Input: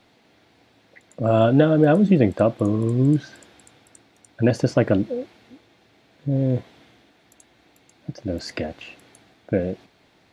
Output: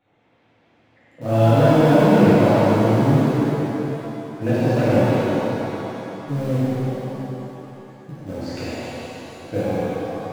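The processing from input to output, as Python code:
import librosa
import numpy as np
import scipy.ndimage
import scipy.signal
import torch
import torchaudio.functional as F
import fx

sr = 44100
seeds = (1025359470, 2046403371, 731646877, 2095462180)

p1 = fx.wiener(x, sr, points=9)
p2 = np.where(np.abs(p1) >= 10.0 ** (-19.0 / 20.0), p1, 0.0)
p3 = p1 + (p2 * librosa.db_to_amplitude(-8.5))
p4 = fx.echo_stepped(p3, sr, ms=118, hz=2800.0, octaves=-0.7, feedback_pct=70, wet_db=-3.0)
p5 = fx.rev_shimmer(p4, sr, seeds[0], rt60_s=3.1, semitones=7, shimmer_db=-8, drr_db=-12.0)
y = p5 * librosa.db_to_amplitude(-12.5)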